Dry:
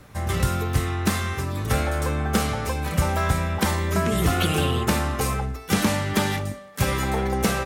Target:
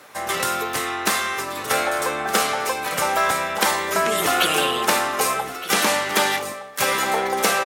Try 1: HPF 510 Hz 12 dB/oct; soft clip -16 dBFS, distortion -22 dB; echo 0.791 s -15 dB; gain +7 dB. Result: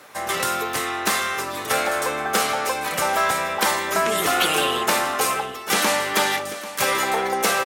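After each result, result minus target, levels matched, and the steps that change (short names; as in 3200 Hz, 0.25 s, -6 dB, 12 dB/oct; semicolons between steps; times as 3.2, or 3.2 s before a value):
soft clip: distortion +16 dB; echo 0.425 s early
change: soft clip -6.5 dBFS, distortion -38 dB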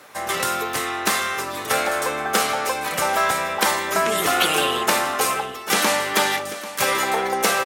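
echo 0.425 s early
change: echo 1.216 s -15 dB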